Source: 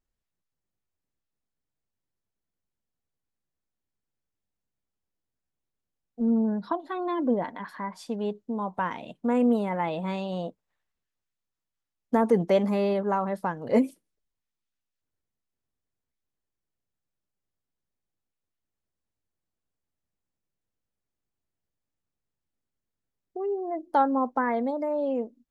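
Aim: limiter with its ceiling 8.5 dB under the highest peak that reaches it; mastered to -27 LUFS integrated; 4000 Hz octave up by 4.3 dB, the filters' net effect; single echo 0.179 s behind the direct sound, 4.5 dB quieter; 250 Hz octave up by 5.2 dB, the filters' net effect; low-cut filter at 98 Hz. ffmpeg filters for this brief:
-af "highpass=98,equalizer=f=250:t=o:g=6,equalizer=f=4k:t=o:g=5.5,alimiter=limit=-16dB:level=0:latency=1,aecho=1:1:179:0.596,volume=-1.5dB"

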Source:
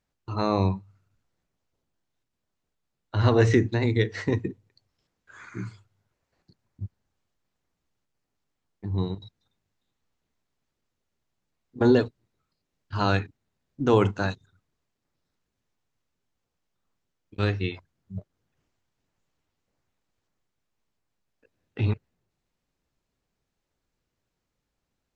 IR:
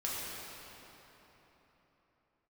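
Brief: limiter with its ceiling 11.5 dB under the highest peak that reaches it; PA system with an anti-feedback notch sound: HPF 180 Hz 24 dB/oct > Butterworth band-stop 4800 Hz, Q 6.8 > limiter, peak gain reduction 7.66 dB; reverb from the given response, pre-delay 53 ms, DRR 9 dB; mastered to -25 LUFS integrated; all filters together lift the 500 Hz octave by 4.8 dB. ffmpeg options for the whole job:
-filter_complex "[0:a]equalizer=f=500:t=o:g=6,alimiter=limit=-15.5dB:level=0:latency=1,asplit=2[a][b];[1:a]atrim=start_sample=2205,adelay=53[c];[b][c]afir=irnorm=-1:irlink=0,volume=-14dB[d];[a][d]amix=inputs=2:normalize=0,highpass=f=180:w=0.5412,highpass=f=180:w=1.3066,asuperstop=centerf=4800:order=8:qfactor=6.8,volume=10dB,alimiter=limit=-11dB:level=0:latency=1"

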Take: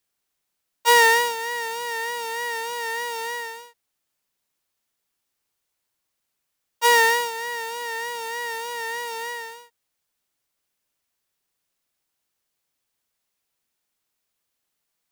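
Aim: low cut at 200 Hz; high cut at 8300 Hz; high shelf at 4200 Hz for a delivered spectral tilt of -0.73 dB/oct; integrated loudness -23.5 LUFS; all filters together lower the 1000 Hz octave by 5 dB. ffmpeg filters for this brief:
-af "highpass=200,lowpass=8.3k,equalizer=f=1k:t=o:g=-5,highshelf=f=4.2k:g=-4.5,volume=2dB"

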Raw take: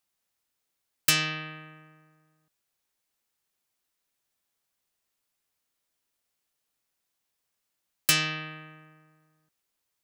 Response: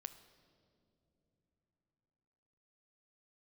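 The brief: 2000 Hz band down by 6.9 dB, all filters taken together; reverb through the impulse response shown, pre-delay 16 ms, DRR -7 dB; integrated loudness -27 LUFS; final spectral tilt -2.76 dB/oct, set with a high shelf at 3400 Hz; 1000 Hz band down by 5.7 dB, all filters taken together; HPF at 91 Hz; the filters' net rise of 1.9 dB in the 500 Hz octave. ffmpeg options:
-filter_complex "[0:a]highpass=91,equalizer=f=500:t=o:g=4.5,equalizer=f=1k:t=o:g=-5.5,equalizer=f=2k:t=o:g=-5,highshelf=f=3.4k:g=-8,asplit=2[a][b];[1:a]atrim=start_sample=2205,adelay=16[c];[b][c]afir=irnorm=-1:irlink=0,volume=11.5dB[d];[a][d]amix=inputs=2:normalize=0,volume=-1.5dB"

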